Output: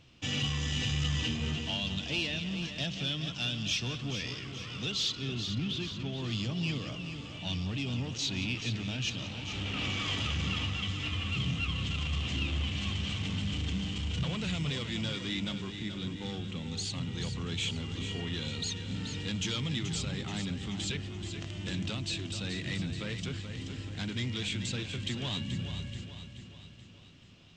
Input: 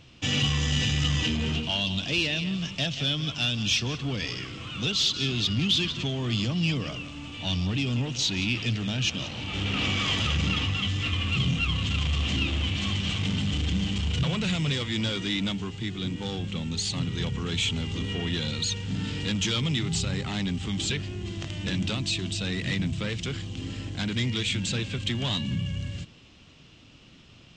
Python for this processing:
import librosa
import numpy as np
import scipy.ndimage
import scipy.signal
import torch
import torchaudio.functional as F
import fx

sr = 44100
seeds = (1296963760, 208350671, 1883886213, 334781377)

y = fx.high_shelf(x, sr, hz=3100.0, db=-12.0, at=(5.15, 6.18))
y = fx.echo_feedback(y, sr, ms=430, feedback_pct=52, wet_db=-9)
y = y * 10.0 ** (-7.0 / 20.0)